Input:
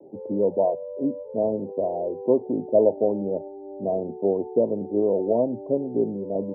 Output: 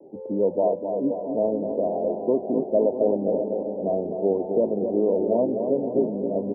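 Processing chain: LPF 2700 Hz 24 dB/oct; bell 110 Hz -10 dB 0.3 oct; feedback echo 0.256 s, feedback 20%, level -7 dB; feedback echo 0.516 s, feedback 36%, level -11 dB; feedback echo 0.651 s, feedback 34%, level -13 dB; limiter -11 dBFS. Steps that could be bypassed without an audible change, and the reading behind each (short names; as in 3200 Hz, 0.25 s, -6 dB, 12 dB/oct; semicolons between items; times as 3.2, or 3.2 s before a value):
LPF 2700 Hz: input band ends at 910 Hz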